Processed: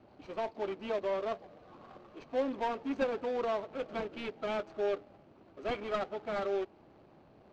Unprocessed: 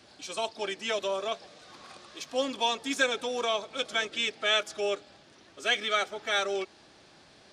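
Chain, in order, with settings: median filter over 25 samples; in parallel at -7 dB: hard clip -35 dBFS, distortion -7 dB; on the sum: air absorption 180 m; gain -2 dB

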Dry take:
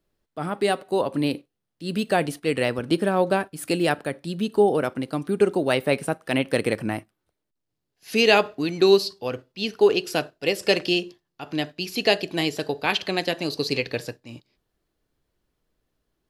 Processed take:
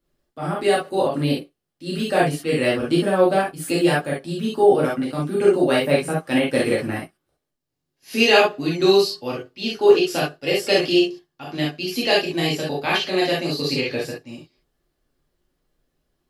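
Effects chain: non-linear reverb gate 90 ms flat, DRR -6 dB; gain -4 dB

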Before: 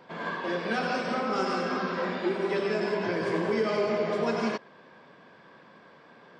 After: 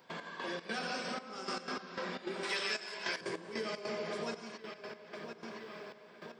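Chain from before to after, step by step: 2.43–3.21 tilt shelf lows -10 dB, about 650 Hz; darkening echo 1.016 s, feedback 52%, low-pass 3900 Hz, level -14.5 dB; step gate ".x..xx.xxxxx...x" 152 bpm -12 dB; compressor 2:1, threshold -49 dBFS, peak gain reduction 14.5 dB; pre-emphasis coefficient 0.8; gain +15 dB

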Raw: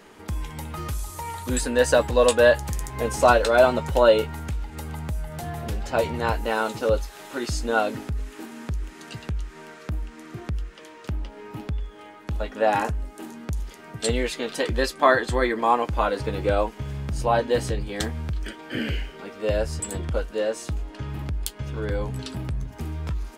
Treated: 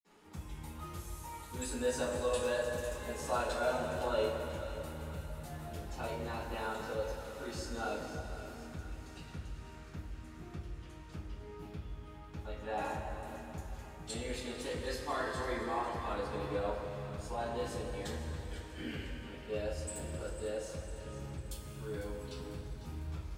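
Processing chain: in parallel at 0 dB: limiter -15 dBFS, peak gain reduction 11.5 dB; on the sum: split-band echo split 1000 Hz, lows 0.144 s, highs 0.5 s, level -12.5 dB; reverb RT60 3.4 s, pre-delay 47 ms; gain +4 dB

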